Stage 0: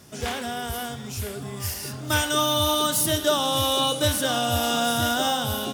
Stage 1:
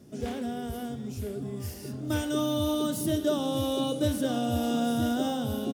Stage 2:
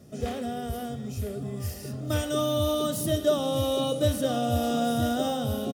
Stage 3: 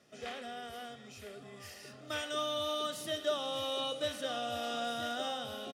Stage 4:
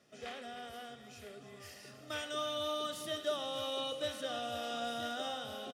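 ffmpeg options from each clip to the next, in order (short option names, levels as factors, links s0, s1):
-af "firequalizer=gain_entry='entry(100,0);entry(250,8);entry(950,-9)':delay=0.05:min_phase=1,volume=0.596"
-af "aecho=1:1:1.6:0.44,volume=1.26"
-af "bandpass=f=2200:t=q:w=0.86:csg=0"
-af "aecho=1:1:306:0.237,volume=0.75"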